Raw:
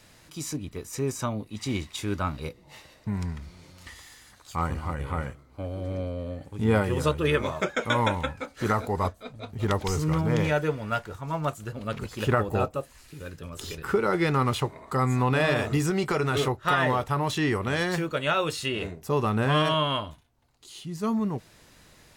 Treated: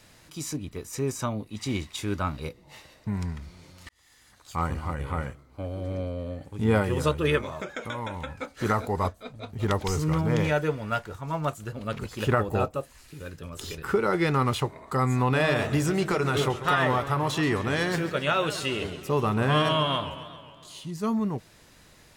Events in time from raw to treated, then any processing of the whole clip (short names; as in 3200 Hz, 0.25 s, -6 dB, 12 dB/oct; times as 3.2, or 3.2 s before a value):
3.89–4.56 fade in
7.38–8.4 compressor 4:1, threshold -31 dBFS
15.46–20.91 warbling echo 0.135 s, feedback 63%, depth 172 cents, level -13 dB